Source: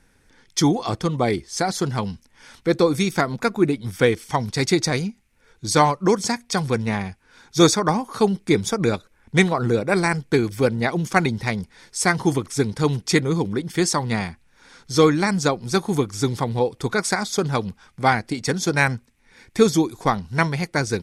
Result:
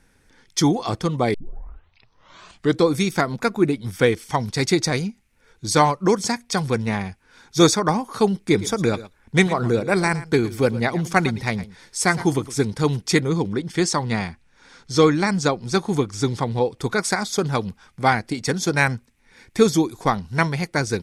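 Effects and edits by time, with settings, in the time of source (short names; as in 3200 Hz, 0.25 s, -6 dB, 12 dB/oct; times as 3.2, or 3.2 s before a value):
1.34 tape start 1.52 s
8.37–12.65 echo 0.113 s -16.5 dB
13.28–16.79 LPF 8600 Hz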